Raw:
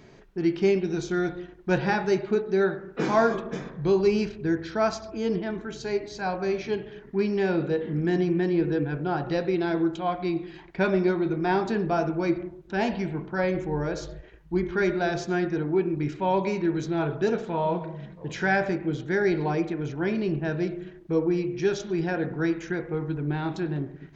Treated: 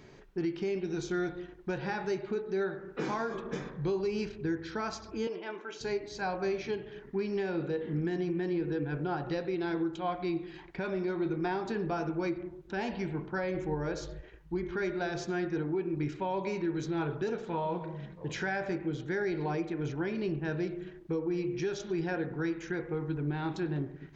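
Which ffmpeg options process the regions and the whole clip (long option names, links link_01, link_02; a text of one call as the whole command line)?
ffmpeg -i in.wav -filter_complex "[0:a]asettb=1/sr,asplit=3[link_01][link_02][link_03];[link_01]atrim=end=5.274[link_04];[link_02]atrim=start=5.27:end=5.81,asetpts=PTS-STARTPTS,afade=type=in:duration=0.004:curve=qsin,afade=type=out:start_time=0.536:duration=0.004:curve=qsin,highpass=470,equalizer=frequency=580:width_type=q:width=4:gain=4,equalizer=frequency=960:width_type=q:width=4:gain=3,equalizer=frequency=2600:width_type=q:width=4:gain=5,equalizer=frequency=4100:width_type=q:width=4:gain=-6,lowpass=frequency=6400:width=0.5412,lowpass=frequency=6400:width=1.3066,bandreject=frequency=1800:width=11[link_05];[link_03]atrim=start=5.806[link_06];[link_04][link_05]acrossfade=duration=0.004:curve1=hsin:curve2=qsin[link_07];[link_07][link_06]acrossfade=duration=0.004:curve1=qsin:curve2=hsin,equalizer=frequency=200:width_type=o:width=0.58:gain=-3,bandreject=frequency=660:width=12,alimiter=limit=-22dB:level=0:latency=1:release=264,volume=-2dB" out.wav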